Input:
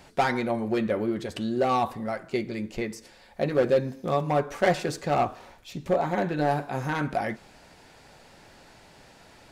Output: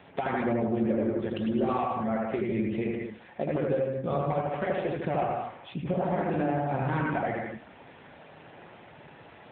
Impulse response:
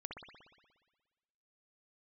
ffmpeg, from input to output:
-filter_complex "[0:a]asplit=3[link_01][link_02][link_03];[link_01]afade=type=out:start_time=0.42:duration=0.02[link_04];[link_02]lowpass=frequency=1700:poles=1,afade=type=in:start_time=0.42:duration=0.02,afade=type=out:start_time=1.23:duration=0.02[link_05];[link_03]afade=type=in:start_time=1.23:duration=0.02[link_06];[link_04][link_05][link_06]amix=inputs=3:normalize=0,asettb=1/sr,asplit=3[link_07][link_08][link_09];[link_07]atrim=end=3.564[link_10];[link_08]atrim=start=3.56:end=4.25,asetpts=PTS-STARTPTS,afade=type=in:duration=0.004:curve=qsin,afade=type=out:start_time=0.686:duration=0.004:curve=qsin,equalizer=frequency=290:width=0.95:gain=-3.5[link_11];[link_09]atrim=start=4.246[link_12];[link_10][link_11]acrossfade=duration=0.004:curve1=hsin:curve2=qsin[link_13];[link_13][link_12]acrossfade=duration=0.004:curve1=qsin:curve2=hsin,acompressor=threshold=-28dB:ratio=16[link_14];[1:a]atrim=start_sample=2205,afade=type=out:start_time=0.25:duration=0.01,atrim=end_sample=11466,asetrate=33957,aresample=44100[link_15];[link_14][link_15]afir=irnorm=-1:irlink=0,volume=6dB" -ar 8000 -c:a libopencore_amrnb -b:a 7950

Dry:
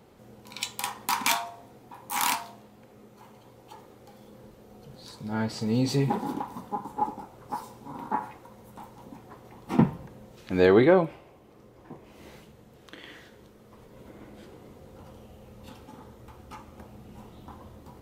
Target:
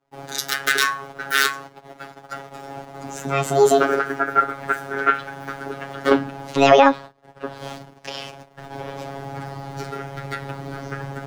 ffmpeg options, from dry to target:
ffmpeg -i in.wav -filter_complex "[0:a]agate=range=-40dB:threshold=-51dB:ratio=16:detection=peak,afftfilt=real='hypot(re,im)*cos(PI*b)':imag='0':win_size=2048:overlap=0.75,asplit=2[link_01][link_02];[link_02]acompressor=threshold=-43dB:ratio=6,volume=-1dB[link_03];[link_01][link_03]amix=inputs=2:normalize=0,asetrate=70560,aresample=44100,acrossover=split=370|920[link_04][link_05][link_06];[link_04]asoftclip=type=hard:threshold=-33.5dB[link_07];[link_07][link_05][link_06]amix=inputs=3:normalize=0,highshelf=frequency=7800:gain=-10,alimiter=level_in=15dB:limit=-1dB:release=50:level=0:latency=1,volume=-1dB" out.wav

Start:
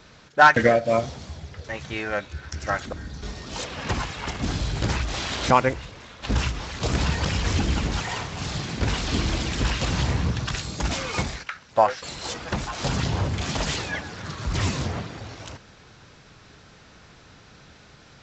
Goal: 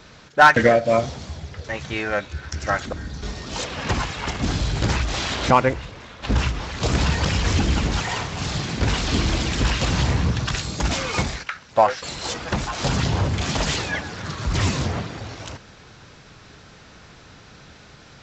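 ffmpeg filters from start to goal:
ffmpeg -i in.wav -filter_complex "[0:a]asettb=1/sr,asplit=3[link_01][link_02][link_03];[link_01]atrim=end=5.334[link_04];[link_02]atrim=start=5.33:end=6.78,asetpts=PTS-STARTPTS,afade=type=in:duration=0.004:curve=qsin,afade=type=out:start_time=1.446:duration=0.004:curve=qsin,highshelf=frequency=4200:gain=-5.5[link_05];[link_03]atrim=start=6.776[link_06];[link_04][link_05]acrossfade=duration=0.004:curve1=hsin:curve2=qsin[link_07];[link_07][link_06]acrossfade=duration=0.004:curve1=qsin:curve2=hsin,asplit=2[link_08][link_09];[link_09]asoftclip=type=tanh:threshold=-16.5dB,volume=-5dB[link_10];[link_08][link_10]amix=inputs=2:normalize=0" out.wav

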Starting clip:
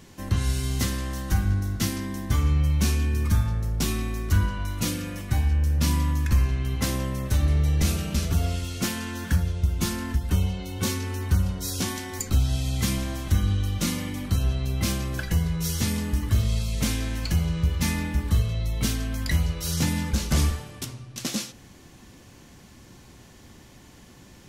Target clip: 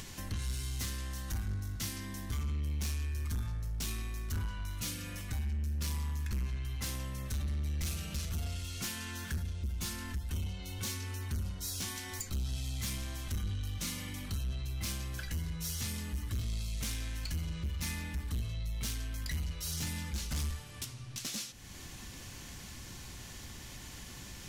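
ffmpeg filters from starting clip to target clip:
ffmpeg -i in.wav -af "equalizer=frequency=360:width=0.32:gain=-10.5,acompressor=mode=upward:threshold=-29dB:ratio=2.5,asoftclip=type=tanh:threshold=-25.5dB,volume=-5dB" out.wav

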